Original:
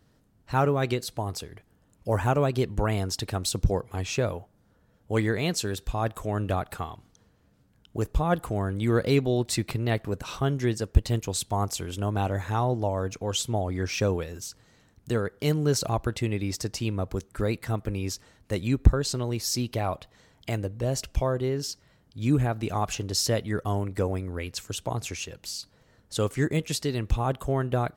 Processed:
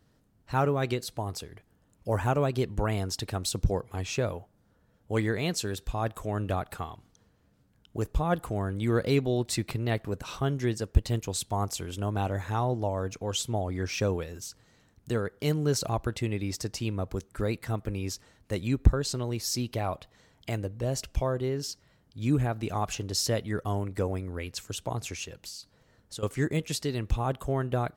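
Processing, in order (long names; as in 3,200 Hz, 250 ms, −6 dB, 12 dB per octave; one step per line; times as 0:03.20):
0:25.38–0:26.23: downward compressor 10 to 1, threshold −36 dBFS, peak gain reduction 14.5 dB
level −2.5 dB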